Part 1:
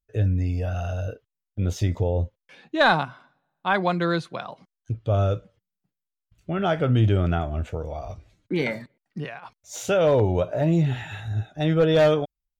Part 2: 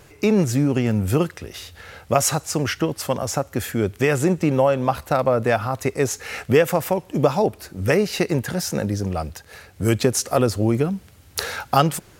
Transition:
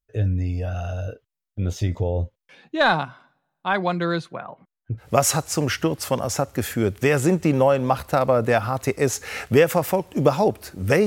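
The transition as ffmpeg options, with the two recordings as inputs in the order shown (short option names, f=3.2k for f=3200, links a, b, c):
-filter_complex "[0:a]asettb=1/sr,asplit=3[a][b][c];[a]atrim=end=4.334[d];[b]atrim=start=4.33:end=5.09,asetpts=PTS-STARTPTS,afade=t=in:d=0.004:c=qsin,afade=t=out:st=0.756:d=0.004:c=qsin,lowpass=f=2.2k:w=0.5412,lowpass=f=2.2k:w=1.3066[e];[c]atrim=start=5.086[f];[d][e]acrossfade=d=0.004:c1=hsin:c2=qsin[g];[g][f]acrossfade=d=0.004:c1=qsin:c2=hsin,apad=whole_dur=11.06,atrim=end=11.06,atrim=end=5.09,asetpts=PTS-STARTPTS[h];[1:a]atrim=start=1.95:end=8.04,asetpts=PTS-STARTPTS[i];[h][i]acrossfade=d=0.12:c1=tri:c2=tri"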